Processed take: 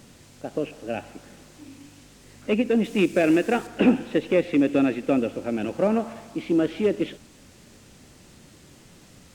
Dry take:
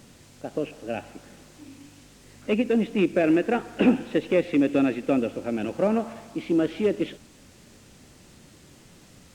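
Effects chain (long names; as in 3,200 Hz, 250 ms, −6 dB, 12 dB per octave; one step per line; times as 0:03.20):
0:02.84–0:03.67: high-shelf EQ 4,100 Hz +10.5 dB
level +1 dB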